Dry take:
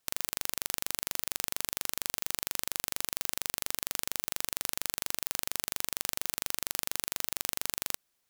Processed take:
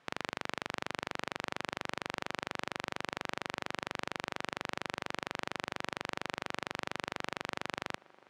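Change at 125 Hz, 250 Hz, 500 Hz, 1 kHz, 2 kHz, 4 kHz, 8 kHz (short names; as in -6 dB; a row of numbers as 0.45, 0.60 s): +3.0, +5.0, +5.0, +5.0, +2.5, -5.5, -18.5 dB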